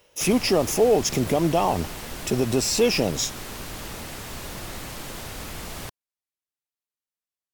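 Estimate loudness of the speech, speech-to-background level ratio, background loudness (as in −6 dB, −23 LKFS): −22.5 LKFS, 13.0 dB, −35.5 LKFS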